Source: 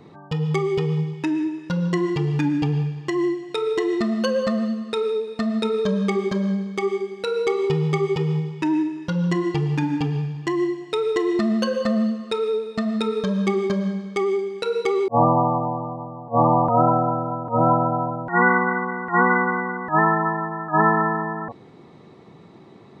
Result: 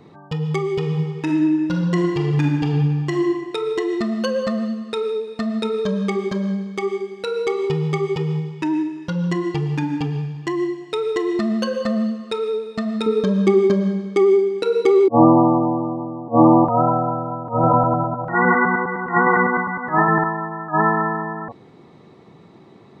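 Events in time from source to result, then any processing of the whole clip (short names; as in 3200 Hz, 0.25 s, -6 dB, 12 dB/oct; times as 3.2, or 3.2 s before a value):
0.78–3.33 reverb throw, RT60 1.4 s, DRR 1.5 dB
13.06–16.65 bell 310 Hz +14.5 dB
17.43–20.24 reverse delay 0.102 s, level -2 dB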